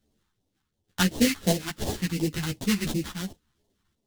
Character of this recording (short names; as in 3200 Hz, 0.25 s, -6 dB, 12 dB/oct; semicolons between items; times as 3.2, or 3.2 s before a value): aliases and images of a low sample rate 2400 Hz, jitter 20%; phasing stages 2, 2.8 Hz, lowest notch 510–1400 Hz; random-step tremolo 3.3 Hz; a shimmering, thickened sound